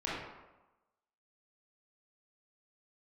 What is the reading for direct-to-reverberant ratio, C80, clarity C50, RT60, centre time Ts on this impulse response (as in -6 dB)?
-8.0 dB, 2.5 dB, -1.5 dB, 1.1 s, 80 ms